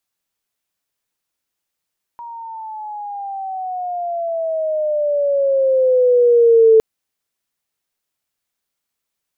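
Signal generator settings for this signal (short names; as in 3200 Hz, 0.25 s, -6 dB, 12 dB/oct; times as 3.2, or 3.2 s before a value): chirp logarithmic 950 Hz -> 440 Hz -29.5 dBFS -> -6 dBFS 4.61 s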